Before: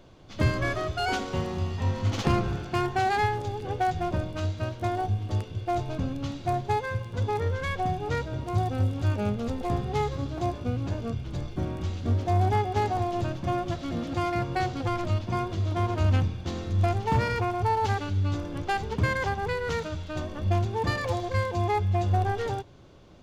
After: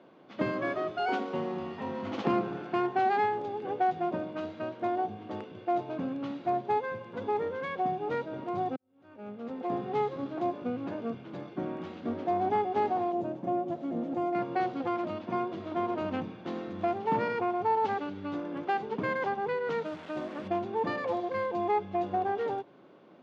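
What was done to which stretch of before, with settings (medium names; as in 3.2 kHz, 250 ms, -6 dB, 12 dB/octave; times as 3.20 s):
8.76–9.78 s: fade in quadratic
13.12–14.35 s: high-order bell 2.4 kHz -10.5 dB 2.6 oct
19.85–20.48 s: one-bit delta coder 64 kbps, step -36 dBFS
whole clip: high-pass 200 Hz 24 dB/octave; dynamic bell 1.7 kHz, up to -4 dB, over -42 dBFS, Q 1.1; low-pass 2.2 kHz 12 dB/octave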